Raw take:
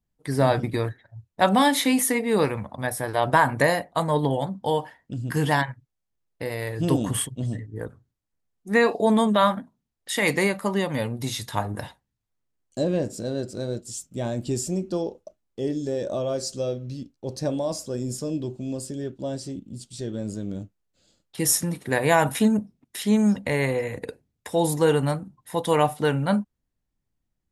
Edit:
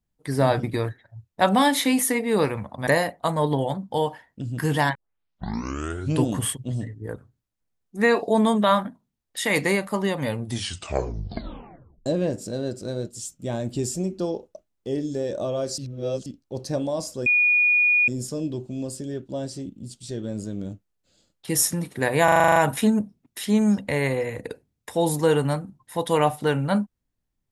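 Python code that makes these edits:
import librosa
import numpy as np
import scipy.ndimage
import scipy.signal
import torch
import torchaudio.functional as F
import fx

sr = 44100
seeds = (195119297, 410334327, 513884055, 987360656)

y = fx.edit(x, sr, fx.cut(start_s=2.87, length_s=0.72),
    fx.tape_start(start_s=5.67, length_s=1.31),
    fx.tape_stop(start_s=11.09, length_s=1.69),
    fx.reverse_span(start_s=16.5, length_s=0.48),
    fx.insert_tone(at_s=17.98, length_s=0.82, hz=2450.0, db=-15.5),
    fx.stutter(start_s=22.14, slice_s=0.04, count=9), tone=tone)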